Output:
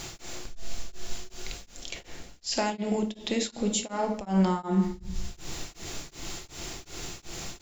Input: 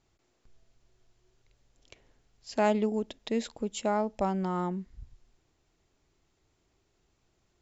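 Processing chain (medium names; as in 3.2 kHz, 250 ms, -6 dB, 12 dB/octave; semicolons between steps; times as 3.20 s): treble shelf 2.4 kHz +11.5 dB; hum notches 60/120 Hz; reverse; upward compressor, threshold -35 dBFS; reverse; peak limiter -27.5 dBFS, peak gain reduction 14.5 dB; in parallel at -2 dB: compression, threshold -46 dBFS, peak gain reduction 13.5 dB; on the sum: simulated room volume 310 m³, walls mixed, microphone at 0.81 m; tremolo of two beating tones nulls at 2.7 Hz; trim +7.5 dB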